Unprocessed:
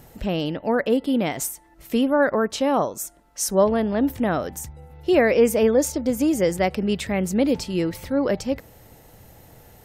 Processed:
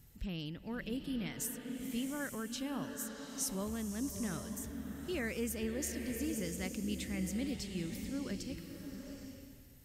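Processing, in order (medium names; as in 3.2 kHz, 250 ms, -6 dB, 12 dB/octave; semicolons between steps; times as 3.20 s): amplifier tone stack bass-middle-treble 6-0-2; swelling reverb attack 840 ms, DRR 5.5 dB; trim +3 dB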